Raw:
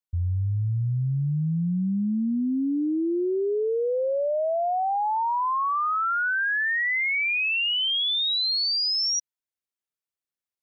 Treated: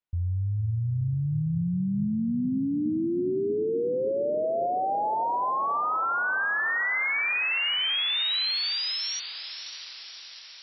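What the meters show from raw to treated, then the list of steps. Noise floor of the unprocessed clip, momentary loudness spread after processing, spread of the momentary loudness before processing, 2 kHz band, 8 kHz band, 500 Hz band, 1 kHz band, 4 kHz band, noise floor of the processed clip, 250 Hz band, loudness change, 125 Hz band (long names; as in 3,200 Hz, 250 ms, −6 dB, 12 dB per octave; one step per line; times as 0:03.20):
below −85 dBFS, 11 LU, 5 LU, −2.0 dB, can't be measured, −2.0 dB, −2.0 dB, −2.5 dB, −44 dBFS, −2.0 dB, −2.5 dB, −2.0 dB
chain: low-pass filter 3,100 Hz 12 dB per octave
brickwall limiter −27.5 dBFS, peak gain reduction 6 dB
feedback delay with all-pass diffusion 565 ms, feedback 59%, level −11 dB
level +3.5 dB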